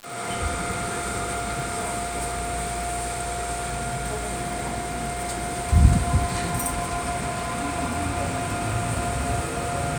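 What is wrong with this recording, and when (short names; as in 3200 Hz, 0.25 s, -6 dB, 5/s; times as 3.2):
crackle 110/s -30 dBFS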